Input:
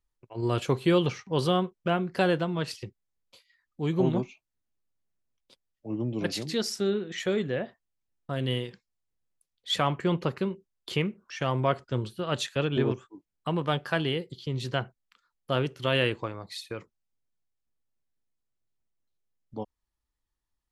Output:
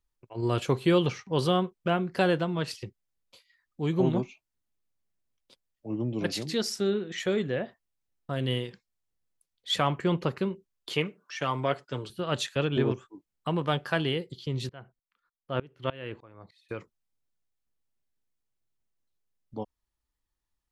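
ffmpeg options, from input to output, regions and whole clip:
-filter_complex "[0:a]asettb=1/sr,asplit=3[a][b][c];[a]atrim=end=10.914[d];[b]atrim=start=10.91:end=12.1,asetpts=PTS-STARTPTS,afade=t=in:d=0.004:c=qsin,afade=t=out:st=1.186:d=0.004:c=qsin,highpass=f=340:p=1,aecho=1:1:6.8:0.52,atrim=end_sample=52479[e];[c]atrim=start=12.096[f];[d][e]acrossfade=d=0.004:c1=hsin:c2=qsin[g];[g][f]acrossfade=d=0.004:c1=qsin:c2=hsin,asettb=1/sr,asplit=3[h][i][j];[h]atrim=end=14.694[k];[i]atrim=start=14.69:end=16.69,asetpts=PTS-STARTPTS,afade=t=in:d=0.004:c=qsin,afade=t=out:st=1.996:d=0.004:c=qsin,bass=f=250:g=0,treble=f=4k:g=-15,aeval=exprs='val(0)*pow(10,-24*if(lt(mod(-3.3*n/s,1),2*abs(-3.3)/1000),1-mod(-3.3*n/s,1)/(2*abs(-3.3)/1000),(mod(-3.3*n/s,1)-2*abs(-3.3)/1000)/(1-2*abs(-3.3)/1000))/20)':c=same[l];[j]atrim=start=16.686[m];[k][l]acrossfade=d=0.004:c1=hsin:c2=qsin[n];[n][m]acrossfade=d=0.004:c1=qsin:c2=hsin"

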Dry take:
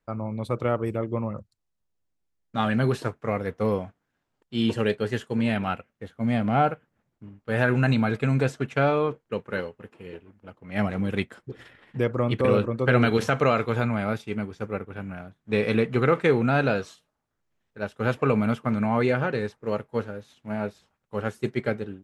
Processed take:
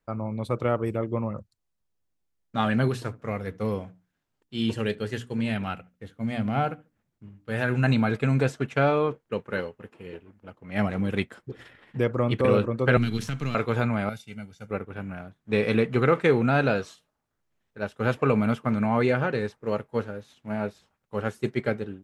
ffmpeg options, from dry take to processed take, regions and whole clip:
-filter_complex "[0:a]asettb=1/sr,asplit=3[a][b][c];[a]atrim=end=2.884[d];[b]atrim=start=2.88:end=7.84,asetpts=PTS-STARTPTS,afade=t=in:d=0.004:c=qsin,afade=t=out:st=4.956:d=0.004:c=qsin,equalizer=f=720:t=o:w=3:g=-5.5,bandreject=f=60:t=h:w=6,bandreject=f=120:t=h:w=6,bandreject=f=180:t=h:w=6,bandreject=f=240:t=h:w=6,bandreject=f=300:t=h:w=6,asplit=2[e][f];[f]adelay=71,lowpass=f=1.2k:p=1,volume=-21.5dB,asplit=2[g][h];[h]adelay=71,lowpass=f=1.2k:p=1,volume=0.34[i];[e][g][i]amix=inputs=3:normalize=0,atrim=end_sample=218736[j];[c]atrim=start=7.836[k];[d][j]acrossfade=d=0.004:c1=hsin:c2=qsin[l];[l][k]acrossfade=d=0.004:c1=qsin:c2=hsin,asettb=1/sr,asplit=3[m][n][o];[m]atrim=end=12.974[p];[n]atrim=start=12.97:end=13.55,asetpts=PTS-STARTPTS,afade=t=in:d=0.004:c=qsin,afade=t=out:st=0.576:d=0.004:c=qsin,aeval=exprs='if(lt(val(0),0),0.708*val(0),val(0))':c=same,equalizer=f=550:w=1.2:g=-11.5,acrossover=split=360|3000[q][r][s];[r]acompressor=threshold=-48dB:ratio=2:attack=3.2:release=140:knee=2.83:detection=peak[t];[q][t][s]amix=inputs=3:normalize=0[u];[o]atrim=start=13.546[v];[p][u]acrossfade=d=0.004:c1=hsin:c2=qsin[w];[w][v]acrossfade=d=0.004:c1=qsin:c2=hsin,asettb=1/sr,asplit=3[x][y][z];[x]atrim=end=14.094[aa];[y]atrim=start=14.09:end=14.71,asetpts=PTS-STARTPTS,afade=t=in:d=0.004:c=qsin,afade=t=out:st=0.616:d=0.004:c=qsin,highpass=f=280:p=1,equalizer=f=880:w=0.36:g=-14,aecho=1:1:1.4:0.7,atrim=end_sample=27342[ab];[z]atrim=start=14.706[ac];[aa][ab]acrossfade=d=0.004:c1=hsin:c2=qsin[ad];[ad][ac]acrossfade=d=0.004:c1=qsin:c2=hsin"

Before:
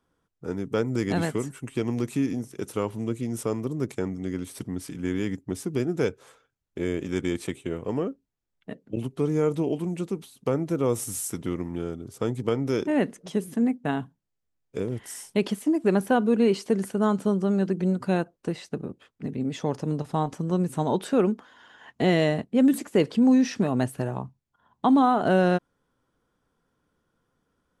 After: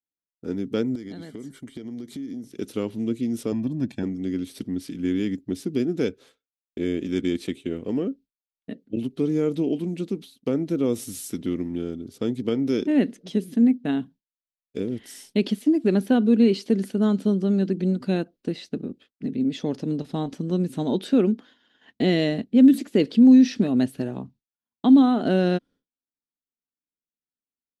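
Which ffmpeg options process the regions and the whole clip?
-filter_complex "[0:a]asettb=1/sr,asplit=3[a][b][c];[a]atrim=end=0.954[d];[b]atrim=start=0.95:end=2.47,asetpts=PTS-STARTPTS,afade=t=in:d=0.004:c=qsin,afade=t=out:st=1.516:d=0.004:c=qsin,acompressor=threshold=-34dB:ratio=10:attack=3.2:release=140:knee=1:detection=peak,asuperstop=centerf=2600:order=4:qfactor=5.4[e];[c]atrim=start=2.466[f];[d][e]acrossfade=d=0.004:c1=hsin:c2=qsin[g];[g][f]acrossfade=d=0.004:c1=qsin:c2=hsin,asettb=1/sr,asplit=3[h][i][j];[h]atrim=end=3.524[k];[i]atrim=start=3.52:end=4.03,asetpts=PTS-STARTPTS,afade=t=in:d=0.004:c=qsin,afade=t=out:st=0.506:d=0.004:c=qsin,highshelf=f=4.3k:g=-11.5,aecho=1:1:1.2:0.87,atrim=end_sample=22491[l];[j]atrim=start=4.026[m];[k][l]acrossfade=d=0.004:c1=hsin:c2=qsin[n];[n][m]acrossfade=d=0.004:c1=qsin:c2=hsin,agate=range=-33dB:threshold=-44dB:ratio=3:detection=peak,equalizer=f=125:t=o:w=1:g=-5,equalizer=f=250:t=o:w=1:g=9,equalizer=f=1k:t=o:w=1:g=-9,equalizer=f=4k:t=o:w=1:g=8,equalizer=f=8k:t=o:w=1:g=-6,volume=-1.5dB"

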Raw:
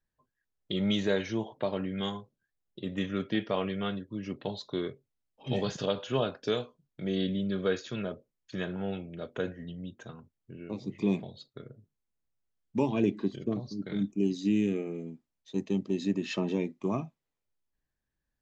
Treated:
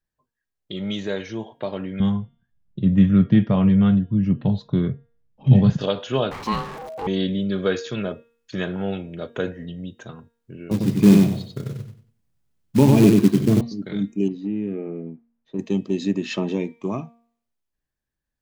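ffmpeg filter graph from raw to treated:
-filter_complex "[0:a]asettb=1/sr,asplit=3[a][b][c];[a]atrim=end=2.004[d];[b]atrim=start=2:end=5.81,asetpts=PTS-STARTPTS,afade=t=in:d=0.004:c=qsin,afade=t=out:st=3.806:d=0.004:c=qsin,lowpass=f=1.4k:p=1,lowshelf=f=250:t=q:w=1.5:g=13[e];[c]atrim=start=5.806[f];[d][e]acrossfade=d=0.004:c1=hsin:c2=qsin[g];[g][f]acrossfade=d=0.004:c1=qsin:c2=hsin,asettb=1/sr,asplit=3[h][i][j];[h]atrim=end=6.314[k];[i]atrim=start=6.31:end=7.07,asetpts=PTS-STARTPTS,afade=t=in:d=0.004:c=qsin,afade=t=out:st=0.756:d=0.004:c=qsin,aeval=exprs='val(0)+0.5*0.0237*sgn(val(0))':c=same,lowpass=f=2.9k:p=1,aeval=exprs='val(0)*sin(2*PI*640*n/s)':c=same[l];[j]atrim=start=7.066[m];[k][l]acrossfade=d=0.004:c1=hsin:c2=qsin[n];[n][m]acrossfade=d=0.004:c1=qsin:c2=hsin,asettb=1/sr,asplit=3[o][p][q];[o]atrim=end=10.714[r];[p]atrim=start=10.71:end=13.61,asetpts=PTS-STARTPTS,afade=t=in:d=0.004:c=qsin,afade=t=out:st=2.896:d=0.004:c=qsin,equalizer=f=120:t=o:w=2.3:g=13.5,acrusher=bits=5:mode=log:mix=0:aa=0.000001,aecho=1:1:94|188|282|376:0.668|0.174|0.0452|0.0117,atrim=end_sample=127890[s];[q]atrim=start=13.606[t];[r][s]acrossfade=d=0.004:c1=hsin:c2=qsin[u];[u][t]acrossfade=d=0.004:c1=qsin:c2=hsin,asettb=1/sr,asplit=3[v][w][x];[v]atrim=end=14.284[y];[w]atrim=start=14.28:end=15.59,asetpts=PTS-STARTPTS,afade=t=in:d=0.004:c=qsin,afade=t=out:st=1.306:d=0.004:c=qsin,lowpass=1.5k,acompressor=threshold=-32dB:ratio=2:attack=3.2:release=140:knee=1:detection=peak[z];[x]atrim=start=15.586[aa];[y][z]acrossfade=d=0.004:c1=hsin:c2=qsin[ab];[ab][aa]acrossfade=d=0.004:c1=qsin:c2=hsin,dynaudnorm=f=330:g=13:m=9dB,bandreject=f=233.3:t=h:w=4,bandreject=f=466.6:t=h:w=4,bandreject=f=699.9:t=h:w=4,bandreject=f=933.2:t=h:w=4,bandreject=f=1.1665k:t=h:w=4,bandreject=f=1.3998k:t=h:w=4,bandreject=f=1.6331k:t=h:w=4,bandreject=f=1.8664k:t=h:w=4,bandreject=f=2.0997k:t=h:w=4,bandreject=f=2.333k:t=h:w=4,bandreject=f=2.5663k:t=h:w=4,bandreject=f=2.7996k:t=h:w=4,bandreject=f=3.0329k:t=h:w=4,bandreject=f=3.2662k:t=h:w=4,bandreject=f=3.4995k:t=h:w=4,bandreject=f=3.7328k:t=h:w=4"

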